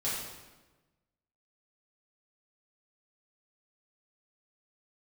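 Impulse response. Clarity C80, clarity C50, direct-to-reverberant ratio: 3.0 dB, 0.5 dB, -9.5 dB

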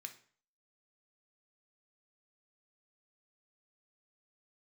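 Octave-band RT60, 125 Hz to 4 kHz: 0.50, 0.45, 0.45, 0.50, 0.45, 0.40 s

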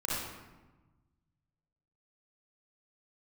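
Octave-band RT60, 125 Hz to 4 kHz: 2.1, 1.6, 1.2, 1.2, 1.0, 0.75 s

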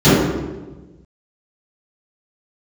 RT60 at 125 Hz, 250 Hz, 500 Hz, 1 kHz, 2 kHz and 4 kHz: 1.7, 1.5, 1.3, 1.1, 0.90, 0.75 s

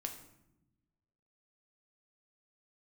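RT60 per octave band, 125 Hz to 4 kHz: 1.6, 1.5, 1.0, 0.75, 0.70, 0.55 s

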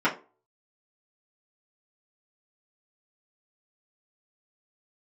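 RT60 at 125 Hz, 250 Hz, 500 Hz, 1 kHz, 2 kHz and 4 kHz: 0.25, 0.35, 0.35, 0.30, 0.25, 0.20 s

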